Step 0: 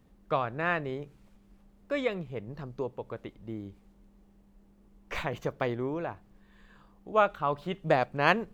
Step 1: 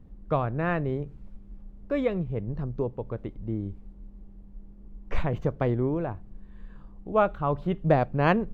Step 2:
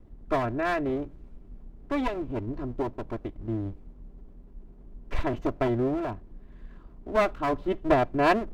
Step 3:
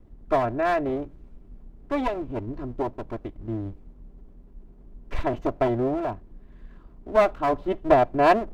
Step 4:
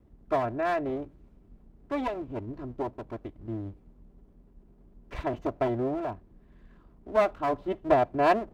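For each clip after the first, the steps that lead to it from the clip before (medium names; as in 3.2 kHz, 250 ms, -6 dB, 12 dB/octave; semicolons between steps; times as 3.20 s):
tilt EQ -3.5 dB/octave
comb filter that takes the minimum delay 3 ms
dynamic bell 700 Hz, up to +6 dB, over -37 dBFS, Q 1.3
high-pass 44 Hz; trim -4.5 dB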